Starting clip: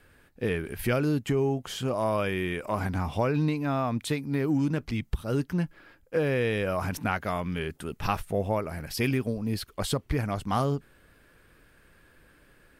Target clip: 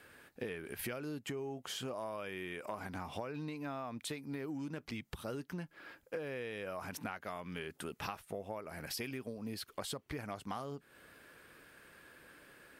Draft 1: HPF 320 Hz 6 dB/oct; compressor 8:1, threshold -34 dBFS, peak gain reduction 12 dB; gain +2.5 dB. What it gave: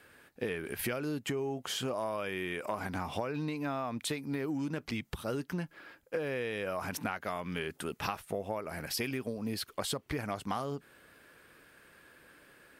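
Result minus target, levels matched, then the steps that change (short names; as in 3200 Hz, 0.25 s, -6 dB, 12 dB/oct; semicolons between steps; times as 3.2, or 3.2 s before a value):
compressor: peak gain reduction -6.5 dB
change: compressor 8:1, threshold -41.5 dBFS, peak gain reduction 18.5 dB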